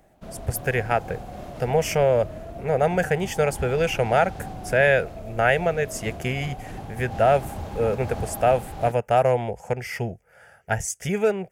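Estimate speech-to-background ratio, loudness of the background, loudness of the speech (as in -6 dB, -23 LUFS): 13.5 dB, -37.0 LUFS, -23.5 LUFS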